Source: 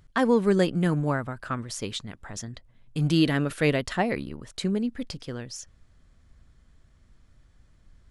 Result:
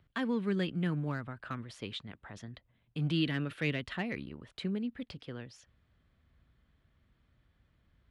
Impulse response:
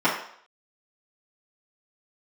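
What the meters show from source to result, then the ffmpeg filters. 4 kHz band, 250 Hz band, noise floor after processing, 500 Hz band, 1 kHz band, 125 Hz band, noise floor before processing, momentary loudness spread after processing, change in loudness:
-7.0 dB, -8.5 dB, -74 dBFS, -13.5 dB, -13.0 dB, -8.0 dB, -59 dBFS, 16 LU, -9.0 dB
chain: -filter_complex "[0:a]highpass=58,highshelf=f=4600:t=q:w=1.5:g=-11.5,acrossover=split=350|1200|1700[s0][s1][s2][s3];[s1]acompressor=threshold=0.0141:ratio=6[s4];[s2]asoftclip=type=hard:threshold=0.0178[s5];[s0][s4][s5][s3]amix=inputs=4:normalize=0,volume=0.422"

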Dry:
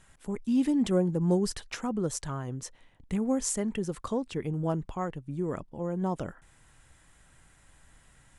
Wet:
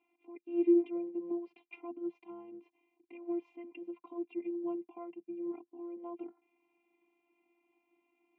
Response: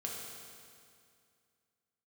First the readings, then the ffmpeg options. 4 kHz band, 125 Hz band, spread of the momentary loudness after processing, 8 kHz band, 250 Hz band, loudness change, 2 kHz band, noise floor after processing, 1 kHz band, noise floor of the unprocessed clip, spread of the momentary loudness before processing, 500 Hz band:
under -20 dB, under -40 dB, 21 LU, under -40 dB, -6.5 dB, -6.0 dB, -13.5 dB, -81 dBFS, -14.0 dB, -61 dBFS, 10 LU, -5.0 dB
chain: -filter_complex "[0:a]asplit=3[s0][s1][s2];[s0]bandpass=f=300:t=q:w=8,volume=1[s3];[s1]bandpass=f=870:t=q:w=8,volume=0.501[s4];[s2]bandpass=f=2240:t=q:w=8,volume=0.355[s5];[s3][s4][s5]amix=inputs=3:normalize=0,afftfilt=real='hypot(re,im)*cos(PI*b)':imag='0':win_size=512:overlap=0.75,highpass=f=170:w=0.5412,highpass=f=170:w=1.3066,equalizer=f=180:t=q:w=4:g=6,equalizer=f=510:t=q:w=4:g=9,equalizer=f=790:t=q:w=4:g=9,equalizer=f=1100:t=q:w=4:g=-3,equalizer=f=1700:t=q:w=4:g=-10,equalizer=f=2600:t=q:w=4:g=9,lowpass=f=2900:w=0.5412,lowpass=f=2900:w=1.3066,volume=1.5"

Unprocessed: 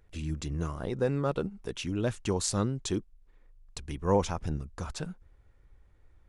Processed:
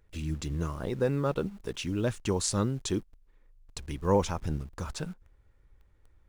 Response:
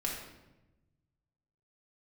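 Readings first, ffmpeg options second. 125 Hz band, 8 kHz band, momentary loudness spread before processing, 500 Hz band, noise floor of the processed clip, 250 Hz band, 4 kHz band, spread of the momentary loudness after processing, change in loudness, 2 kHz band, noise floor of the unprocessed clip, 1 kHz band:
+1.0 dB, +1.0 dB, 13 LU, +0.5 dB, -63 dBFS, +1.0 dB, +1.0 dB, 12 LU, +0.5 dB, +1.0 dB, -61 dBFS, 0.0 dB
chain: -filter_complex "[0:a]bandreject=f=720:w=13,asplit=2[s0][s1];[s1]acrusher=bits=7:mix=0:aa=0.000001,volume=0.376[s2];[s0][s2]amix=inputs=2:normalize=0,volume=0.794"

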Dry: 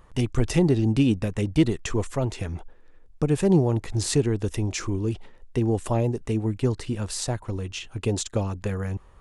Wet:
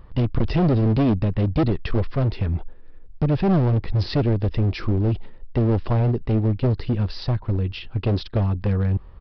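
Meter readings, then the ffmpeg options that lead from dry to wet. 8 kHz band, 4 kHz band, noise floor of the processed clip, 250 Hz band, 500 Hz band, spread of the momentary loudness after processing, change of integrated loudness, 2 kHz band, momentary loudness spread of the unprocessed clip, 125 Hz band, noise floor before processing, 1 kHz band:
under -25 dB, -1.0 dB, -41 dBFS, +1.5 dB, +0.5 dB, 7 LU, +3.0 dB, 0.0 dB, 10 LU, +5.5 dB, -50 dBFS, +4.0 dB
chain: -af "lowshelf=f=320:g=10,aresample=11025,asoftclip=type=hard:threshold=0.168,aresample=44100"

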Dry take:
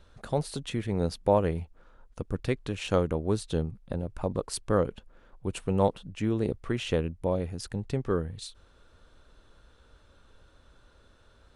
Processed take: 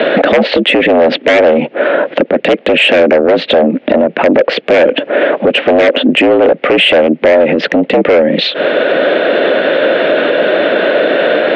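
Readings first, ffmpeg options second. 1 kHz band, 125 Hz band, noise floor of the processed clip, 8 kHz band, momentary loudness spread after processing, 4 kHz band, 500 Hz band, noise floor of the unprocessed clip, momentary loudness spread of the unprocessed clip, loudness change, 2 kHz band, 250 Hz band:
+20.5 dB, +3.0 dB, -35 dBFS, no reading, 4 LU, +28.0 dB, +23.5 dB, -60 dBFS, 10 LU, +20.5 dB, +32.0 dB, +19.5 dB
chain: -af "aeval=exprs='0.316*sin(PI/2*5.62*val(0)/0.316)':c=same,acompressor=threshold=0.0355:ratio=8,equalizer=f=500:t=o:w=1:g=11,equalizer=f=1000:t=o:w=1:g=-12,equalizer=f=2000:t=o:w=1:g=6,highpass=f=180:t=q:w=0.5412,highpass=f=180:t=q:w=1.307,lowpass=f=3100:t=q:w=0.5176,lowpass=f=3100:t=q:w=0.7071,lowpass=f=3100:t=q:w=1.932,afreqshift=65,asoftclip=type=tanh:threshold=0.0841,alimiter=level_in=47.3:limit=0.891:release=50:level=0:latency=1,volume=0.891"

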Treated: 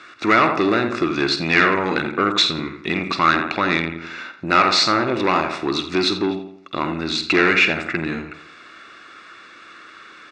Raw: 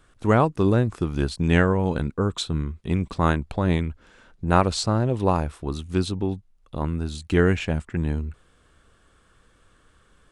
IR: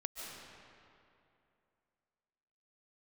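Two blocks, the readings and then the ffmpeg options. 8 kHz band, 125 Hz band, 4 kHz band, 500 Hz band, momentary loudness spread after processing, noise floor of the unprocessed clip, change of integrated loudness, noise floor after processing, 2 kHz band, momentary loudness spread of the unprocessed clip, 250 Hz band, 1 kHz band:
+4.0 dB, -8.5 dB, +13.5 dB, +2.5 dB, 12 LU, -60 dBFS, +5.0 dB, -44 dBFS, +12.5 dB, 10 LU, +2.0 dB, +7.5 dB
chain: -filter_complex "[0:a]asplit=2[s0][s1];[s1]acompressor=threshold=0.0355:ratio=6,volume=1[s2];[s0][s2]amix=inputs=2:normalize=0,highshelf=f=2100:g=9,asplit=2[s3][s4];[s4]adelay=49,volume=0.224[s5];[s3][s5]amix=inputs=2:normalize=0,asplit=2[s6][s7];[s7]adelay=85,lowpass=f=3000:p=1,volume=0.299,asplit=2[s8][s9];[s9]adelay=85,lowpass=f=3000:p=1,volume=0.43,asplit=2[s10][s11];[s11]adelay=85,lowpass=f=3000:p=1,volume=0.43,asplit=2[s12][s13];[s13]adelay=85,lowpass=f=3000:p=1,volume=0.43,asplit=2[s14][s15];[s15]adelay=85,lowpass=f=3000:p=1,volume=0.43[s16];[s6][s8][s10][s12][s14][s16]amix=inputs=6:normalize=0,asoftclip=type=tanh:threshold=0.126,asuperstop=centerf=3100:order=4:qfactor=5,highpass=300,equalizer=f=330:t=q:w=4:g=7,equalizer=f=480:t=q:w=4:g=-6,equalizer=f=900:t=q:w=4:g=-3,equalizer=f=1300:t=q:w=4:g=8,equalizer=f=2100:t=q:w=4:g=8,equalizer=f=3000:t=q:w=4:g=9,lowpass=f=5300:w=0.5412,lowpass=f=5300:w=1.3066,volume=2.11"

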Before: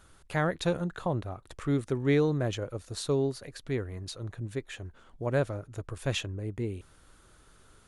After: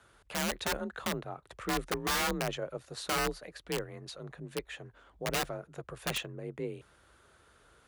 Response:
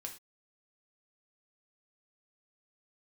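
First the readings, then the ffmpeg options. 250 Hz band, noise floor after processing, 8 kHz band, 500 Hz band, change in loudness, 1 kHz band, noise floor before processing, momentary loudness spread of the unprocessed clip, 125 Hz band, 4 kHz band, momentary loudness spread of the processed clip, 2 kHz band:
-7.5 dB, -64 dBFS, +5.5 dB, -6.5 dB, -3.5 dB, +2.5 dB, -59 dBFS, 13 LU, -11.5 dB, +3.5 dB, 14 LU, +2.0 dB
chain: -af "bass=f=250:g=-10,treble=f=4000:g=-7,aeval=exprs='(mod(18.8*val(0)+1,2)-1)/18.8':c=same,afreqshift=36"

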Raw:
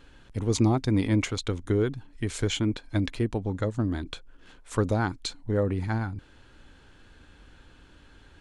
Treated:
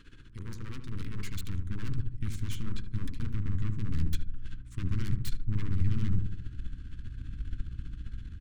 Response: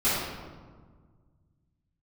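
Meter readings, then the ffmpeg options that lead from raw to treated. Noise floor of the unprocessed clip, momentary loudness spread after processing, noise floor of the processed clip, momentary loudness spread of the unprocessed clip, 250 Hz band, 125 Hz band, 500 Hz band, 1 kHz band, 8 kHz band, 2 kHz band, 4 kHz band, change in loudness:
-55 dBFS, 12 LU, -48 dBFS, 11 LU, -11.5 dB, -3.5 dB, -24.0 dB, -18.5 dB, -12.5 dB, -12.0 dB, -12.5 dB, -8.0 dB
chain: -filter_complex "[0:a]deesser=0.7,highshelf=f=4700:g=-2.5,tremolo=f=15:d=0.67,areverse,acompressor=threshold=0.0158:ratio=8,areverse,aeval=exprs='0.0668*(cos(1*acos(clip(val(0)/0.0668,-1,1)))-cos(1*PI/2))+0.015*(cos(8*acos(clip(val(0)/0.0668,-1,1)))-cos(8*PI/2))':c=same,aeval=exprs='val(0)+0.000891*(sin(2*PI*60*n/s)+sin(2*PI*2*60*n/s)/2+sin(2*PI*3*60*n/s)/3+sin(2*PI*4*60*n/s)/4+sin(2*PI*5*60*n/s)/5)':c=same,aeval=exprs='0.0266*(abs(mod(val(0)/0.0266+3,4)-2)-1)':c=same,asubboost=boost=9:cutoff=170,asuperstop=centerf=690:order=4:qfactor=0.92,asplit=2[s0][s1];[s1]adelay=76,lowpass=f=960:p=1,volume=0.531,asplit=2[s2][s3];[s3]adelay=76,lowpass=f=960:p=1,volume=0.49,asplit=2[s4][s5];[s5]adelay=76,lowpass=f=960:p=1,volume=0.49,asplit=2[s6][s7];[s7]adelay=76,lowpass=f=960:p=1,volume=0.49,asplit=2[s8][s9];[s9]adelay=76,lowpass=f=960:p=1,volume=0.49,asplit=2[s10][s11];[s11]adelay=76,lowpass=f=960:p=1,volume=0.49[s12];[s2][s4][s6][s8][s10][s12]amix=inputs=6:normalize=0[s13];[s0][s13]amix=inputs=2:normalize=0"

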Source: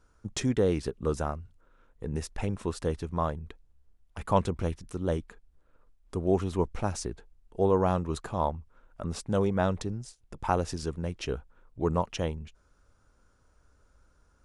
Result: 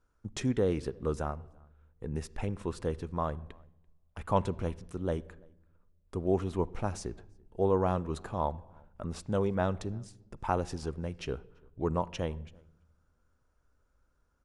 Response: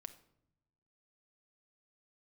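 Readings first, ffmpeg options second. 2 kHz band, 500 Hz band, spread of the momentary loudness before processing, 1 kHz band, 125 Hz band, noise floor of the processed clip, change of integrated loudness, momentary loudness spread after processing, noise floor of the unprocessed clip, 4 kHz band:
-3.5 dB, -3.0 dB, 15 LU, -3.0 dB, -3.0 dB, -73 dBFS, -3.0 dB, 15 LU, -65 dBFS, -5.5 dB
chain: -filter_complex "[0:a]agate=range=0.501:threshold=0.00158:ratio=16:detection=peak,asplit=2[s0][s1];[s1]adelay=338.2,volume=0.0355,highshelf=f=4000:g=-7.61[s2];[s0][s2]amix=inputs=2:normalize=0,asplit=2[s3][s4];[1:a]atrim=start_sample=2205,asetrate=30429,aresample=44100,lowpass=4200[s5];[s4][s5]afir=irnorm=-1:irlink=0,volume=0.668[s6];[s3][s6]amix=inputs=2:normalize=0,volume=0.501"

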